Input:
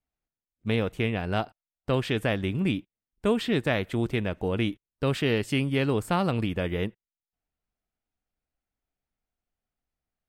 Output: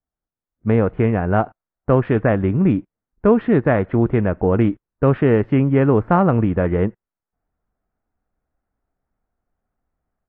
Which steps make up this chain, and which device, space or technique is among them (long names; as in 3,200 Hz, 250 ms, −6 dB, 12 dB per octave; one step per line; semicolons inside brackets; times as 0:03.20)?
action camera in a waterproof case (low-pass filter 1,600 Hz 24 dB per octave; automatic gain control gain up to 12 dB; AAC 48 kbit/s 32,000 Hz)